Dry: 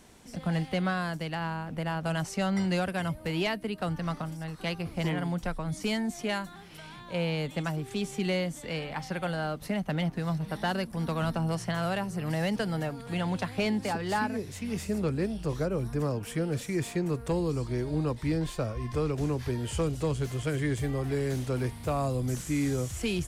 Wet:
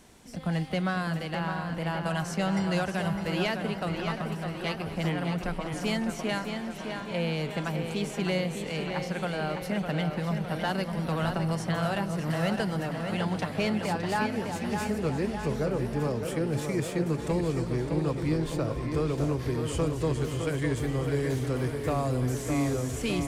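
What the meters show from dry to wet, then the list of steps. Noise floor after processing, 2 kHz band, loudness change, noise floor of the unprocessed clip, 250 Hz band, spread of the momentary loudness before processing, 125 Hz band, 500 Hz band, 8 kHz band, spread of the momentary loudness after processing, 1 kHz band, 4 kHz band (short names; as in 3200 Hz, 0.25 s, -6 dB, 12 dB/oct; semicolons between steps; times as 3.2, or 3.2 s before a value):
-37 dBFS, +1.5 dB, +1.5 dB, -46 dBFS, +1.5 dB, 5 LU, +1.0 dB, +2.0 dB, +0.5 dB, 4 LU, +2.0 dB, +1.0 dB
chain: tape echo 0.608 s, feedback 69%, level -4.5 dB, low-pass 4200 Hz; warbling echo 0.239 s, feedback 78%, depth 120 cents, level -17 dB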